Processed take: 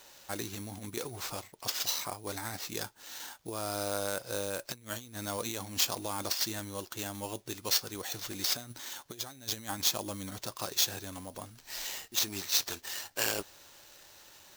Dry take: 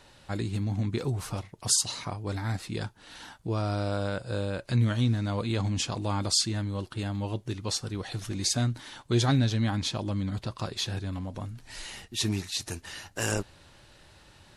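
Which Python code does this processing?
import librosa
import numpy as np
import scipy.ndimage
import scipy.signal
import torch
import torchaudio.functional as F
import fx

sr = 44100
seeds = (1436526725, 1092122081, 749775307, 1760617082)

y = fx.over_compress(x, sr, threshold_db=-29.0, ratio=-0.5)
y = fx.sample_hold(y, sr, seeds[0], rate_hz=10000.0, jitter_pct=0)
y = fx.bass_treble(y, sr, bass_db=-14, treble_db=9)
y = y * 10.0 ** (-3.0 / 20.0)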